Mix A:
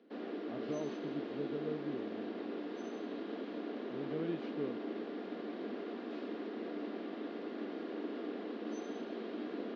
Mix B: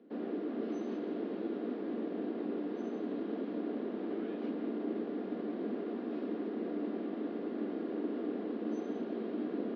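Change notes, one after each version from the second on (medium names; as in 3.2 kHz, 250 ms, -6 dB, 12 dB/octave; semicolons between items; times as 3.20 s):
speech: add brick-wall FIR high-pass 1.2 kHz; master: add tilt EQ -3 dB/octave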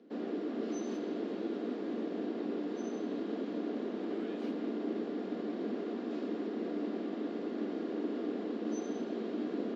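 master: remove distance through air 240 m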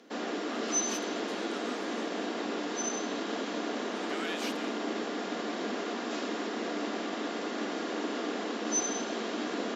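speech +4.5 dB; master: remove FFT filter 380 Hz 0 dB, 900 Hz -13 dB, 4.4 kHz -16 dB, 6.3 kHz -25 dB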